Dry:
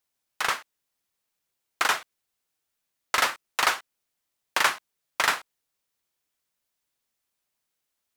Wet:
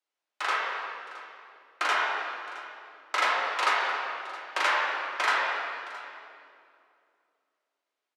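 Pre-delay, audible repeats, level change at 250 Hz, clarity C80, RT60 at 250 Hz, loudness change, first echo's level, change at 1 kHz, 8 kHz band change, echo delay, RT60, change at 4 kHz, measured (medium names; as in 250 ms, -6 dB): 3 ms, 1, -2.5 dB, -0.5 dB, 3.1 s, -2.0 dB, -17.5 dB, +1.5 dB, -10.5 dB, 667 ms, 2.6 s, -3.0 dB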